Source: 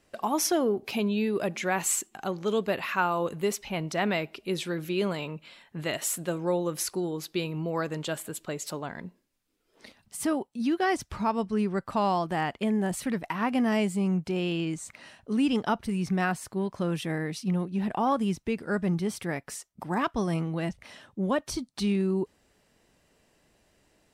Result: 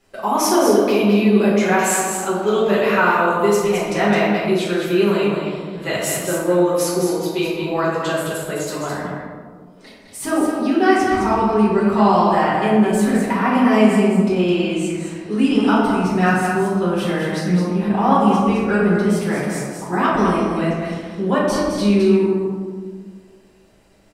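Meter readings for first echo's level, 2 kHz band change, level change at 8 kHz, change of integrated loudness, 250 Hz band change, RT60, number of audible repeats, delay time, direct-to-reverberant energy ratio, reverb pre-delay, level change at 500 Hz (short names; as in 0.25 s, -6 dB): -5.5 dB, +11.5 dB, +7.0 dB, +11.5 dB, +11.5 dB, 1.7 s, 1, 0.212 s, -8.5 dB, 5 ms, +13.0 dB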